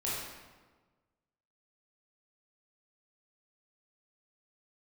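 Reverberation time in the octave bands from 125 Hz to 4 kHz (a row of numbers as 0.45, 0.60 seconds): 1.6, 1.5, 1.4, 1.3, 1.1, 0.90 seconds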